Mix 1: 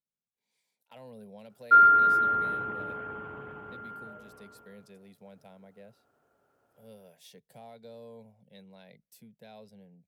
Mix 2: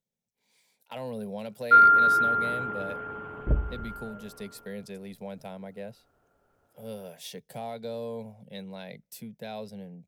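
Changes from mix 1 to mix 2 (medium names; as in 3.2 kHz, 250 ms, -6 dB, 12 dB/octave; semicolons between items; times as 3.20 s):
speech +12.0 dB; first sound: send +7.0 dB; second sound: unmuted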